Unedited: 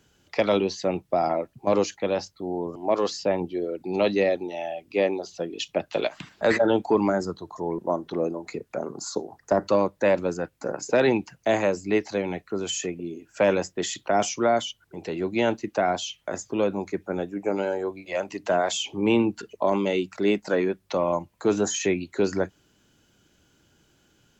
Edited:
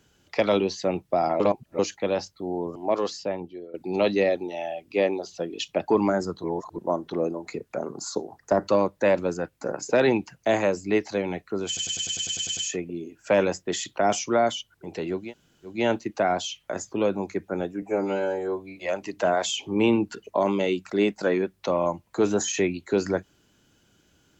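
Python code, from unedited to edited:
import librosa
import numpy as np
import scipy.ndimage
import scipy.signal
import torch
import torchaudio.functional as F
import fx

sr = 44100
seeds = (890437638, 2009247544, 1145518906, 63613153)

y = fx.edit(x, sr, fx.reverse_span(start_s=1.4, length_s=0.39),
    fx.fade_out_to(start_s=2.78, length_s=0.96, floor_db=-15.5),
    fx.cut(start_s=5.88, length_s=1.0),
    fx.reverse_span(start_s=7.44, length_s=0.32),
    fx.stutter(start_s=12.67, slice_s=0.1, count=10),
    fx.insert_room_tone(at_s=15.32, length_s=0.52, crossfade_s=0.24),
    fx.stretch_span(start_s=17.4, length_s=0.63, factor=1.5), tone=tone)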